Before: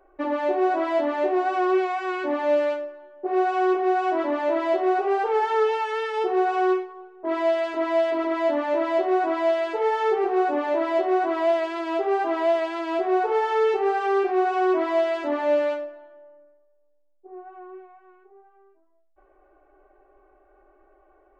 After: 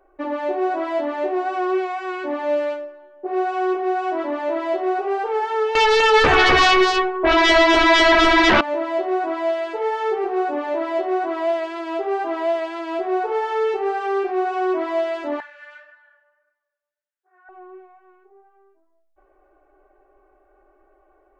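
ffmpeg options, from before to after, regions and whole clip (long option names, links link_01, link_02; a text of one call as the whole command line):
ffmpeg -i in.wav -filter_complex "[0:a]asettb=1/sr,asplit=3[link_01][link_02][link_03];[link_01]atrim=end=5.754[link_04];[link_02]atrim=start=5.75:end=8.61,asetpts=PTS-STARTPTS,afade=type=in:duration=0.004:curve=qsin,afade=type=out:start_time=2.856:duration=0.004:curve=qsin,lowpass=3500,aeval=exprs='0.251*sin(PI/2*5.01*val(0)/0.251)':channel_layout=same,aecho=1:1:251:0.631,atrim=end_sample=126126[link_05];[link_03]atrim=start=8.606[link_06];[link_04][link_05]acrossfade=duration=0.004:curve1=hsin:curve2=qsin[link_07];[link_07][link_06]acrossfade=duration=0.004:curve1=qsin:curve2=hsin,asettb=1/sr,asplit=3[link_08][link_09][link_10];[link_08]atrim=end=15.404[link_11];[link_09]atrim=start=15.4:end=17.49,asetpts=PTS-STARTPTS,afade=type=in:duration=0.004:curve=qsin,afade=type=out:start_time=2.086:duration=0.004:curve=qsin,acompressor=threshold=-32dB:ratio=5:attack=3.2:release=140:knee=1:detection=peak,flanger=delay=16:depth=4.3:speed=1.7,highpass=frequency=1600:width_type=q:width=4.5[link_12];[link_10]atrim=start=17.486[link_13];[link_11][link_12]acrossfade=duration=0.004:curve1=hsin:curve2=qsin[link_14];[link_14][link_13]acrossfade=duration=0.004:curve1=qsin:curve2=hsin" out.wav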